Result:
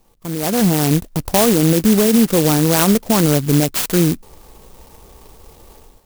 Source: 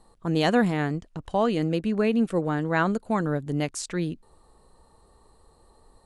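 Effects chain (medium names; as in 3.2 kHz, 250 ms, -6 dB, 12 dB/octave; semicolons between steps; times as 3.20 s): peak limiter -20 dBFS, peak gain reduction 11 dB; level rider gain up to 14 dB; sampling jitter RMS 0.15 ms; trim +1 dB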